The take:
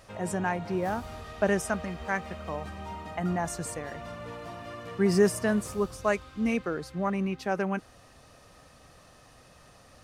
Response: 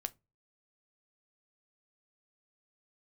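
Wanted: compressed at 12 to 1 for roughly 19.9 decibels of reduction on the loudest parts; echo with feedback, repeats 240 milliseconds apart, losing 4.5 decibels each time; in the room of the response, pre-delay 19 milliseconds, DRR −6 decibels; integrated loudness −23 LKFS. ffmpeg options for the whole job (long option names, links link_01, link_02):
-filter_complex "[0:a]acompressor=threshold=-36dB:ratio=12,aecho=1:1:240|480|720|960|1200|1440|1680|1920|2160:0.596|0.357|0.214|0.129|0.0772|0.0463|0.0278|0.0167|0.01,asplit=2[link_01][link_02];[1:a]atrim=start_sample=2205,adelay=19[link_03];[link_02][link_03]afir=irnorm=-1:irlink=0,volume=7.5dB[link_04];[link_01][link_04]amix=inputs=2:normalize=0,volume=9.5dB"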